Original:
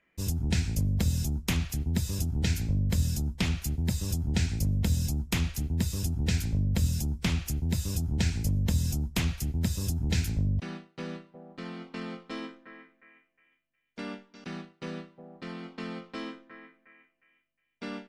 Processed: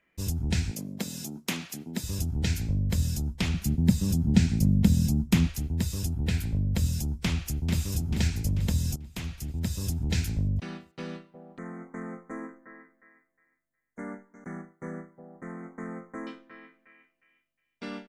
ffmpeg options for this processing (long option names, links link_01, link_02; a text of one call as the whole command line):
ffmpeg -i in.wav -filter_complex "[0:a]asettb=1/sr,asplit=3[link_01][link_02][link_03];[link_01]atrim=end=0.714[link_04];[link_02]atrim=start=0.71:end=2.04,asetpts=PTS-STARTPTS,afade=type=in:duration=0.004:curve=qsin,afade=type=out:start_time=1.326:duration=0.004:curve=qsin,highpass=frequency=190:width=0.5412,highpass=frequency=190:width=1.3066[link_05];[link_03]atrim=start=2.036[link_06];[link_04][link_05]acrossfade=duration=0.004:curve1=hsin:curve2=qsin[link_07];[link_07][link_06]acrossfade=duration=0.004:curve1=qsin:curve2=hsin,asettb=1/sr,asplit=3[link_08][link_09][link_10];[link_08]atrim=end=3.544[link_11];[link_09]atrim=start=3.54:end=5.47,asetpts=PTS-STARTPTS,afade=type=in:duration=0.004:curve=qsin,afade=type=out:start_time=1.926:duration=0.004:curve=qsin,equalizer=frequency=200:width=1.2:gain=11.5[link_12];[link_10]atrim=start=5.466[link_13];[link_11][link_12]acrossfade=duration=0.004:curve1=hsin:curve2=qsin[link_14];[link_14][link_13]acrossfade=duration=0.004:curve1=qsin:curve2=hsin,asettb=1/sr,asplit=3[link_15][link_16][link_17];[link_15]atrim=end=6.134[link_18];[link_16]atrim=start=6.13:end=6.67,asetpts=PTS-STARTPTS,afade=type=in:duration=0.004:curve=qsin,afade=type=out:start_time=0.536:duration=0.004:curve=qsin,equalizer=frequency=6000:width_type=o:width=0.87:gain=-7.5[link_19];[link_17]atrim=start=6.666[link_20];[link_18][link_19]acrossfade=duration=0.004:curve1=hsin:curve2=qsin[link_21];[link_21][link_20]acrossfade=duration=0.004:curve1=qsin:curve2=hsin,asplit=2[link_22][link_23];[link_23]afade=type=in:start_time=7.24:duration=0.01,afade=type=out:start_time=7.83:duration=0.01,aecho=0:1:440|880|1320|1760|2200|2640|3080:0.446684|0.245676|0.135122|0.074317|0.0408743|0.0224809|0.0123645[link_24];[link_22][link_24]amix=inputs=2:normalize=0,asettb=1/sr,asplit=3[link_25][link_26][link_27];[link_25]atrim=end=11.584[link_28];[link_26]atrim=start=11.58:end=16.27,asetpts=PTS-STARTPTS,afade=type=in:duration=0.004:curve=qsin,afade=type=out:start_time=4.686:duration=0.004:curve=qsin,asuperstop=centerf=3700:order=20:qfactor=0.9[link_29];[link_27]atrim=start=16.266[link_30];[link_28][link_29]acrossfade=duration=0.004:curve1=hsin:curve2=qsin[link_31];[link_31][link_30]acrossfade=duration=0.004:curve1=qsin:curve2=hsin,asplit=2[link_32][link_33];[link_32]atrim=end=8.96,asetpts=PTS-STARTPTS,afade=type=out:start_time=8.956:duration=0.004:curve=hsin:silence=0.199526[link_34];[link_33]atrim=start=8.96,asetpts=PTS-STARTPTS,afade=type=in:duration=0.92:silence=0.199526[link_35];[link_34][link_35]concat=n=2:v=0:a=1" out.wav